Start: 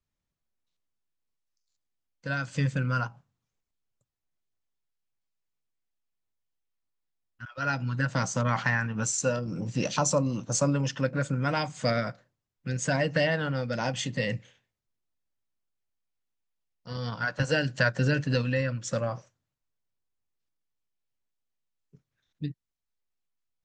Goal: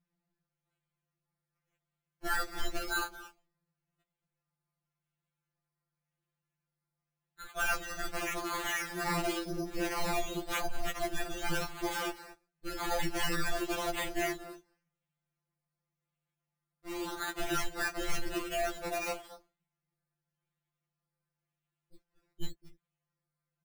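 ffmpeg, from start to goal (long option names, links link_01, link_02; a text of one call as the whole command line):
ffmpeg -i in.wav -filter_complex "[0:a]alimiter=limit=-21.5dB:level=0:latency=1:release=15,asplit=2[link_01][link_02];[link_02]adelay=227.4,volume=-15dB,highshelf=frequency=4000:gain=-5.12[link_03];[link_01][link_03]amix=inputs=2:normalize=0,aeval=exprs='val(0)*sin(2*PI*150*n/s)':channel_layout=same,acrusher=samples=11:mix=1:aa=0.000001:lfo=1:lforange=6.6:lforate=0.91,afftfilt=real='re*2.83*eq(mod(b,8),0)':imag='im*2.83*eq(mod(b,8),0)':win_size=2048:overlap=0.75,volume=4.5dB" out.wav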